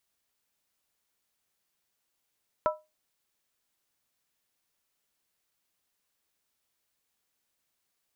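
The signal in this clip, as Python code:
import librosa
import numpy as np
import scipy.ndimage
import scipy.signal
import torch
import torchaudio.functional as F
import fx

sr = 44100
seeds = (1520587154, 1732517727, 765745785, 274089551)

y = fx.strike_skin(sr, length_s=0.63, level_db=-21, hz=617.0, decay_s=0.24, tilt_db=2.0, modes=3)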